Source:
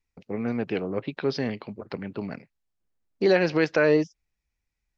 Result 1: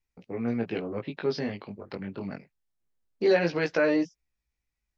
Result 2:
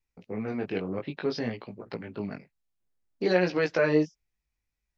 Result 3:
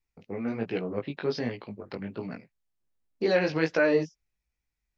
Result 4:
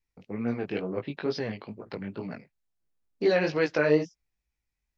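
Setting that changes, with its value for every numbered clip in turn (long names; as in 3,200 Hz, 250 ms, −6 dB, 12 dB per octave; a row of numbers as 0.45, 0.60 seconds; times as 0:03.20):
chorus effect, speed: 0.24, 0.58, 1.3, 2.2 Hertz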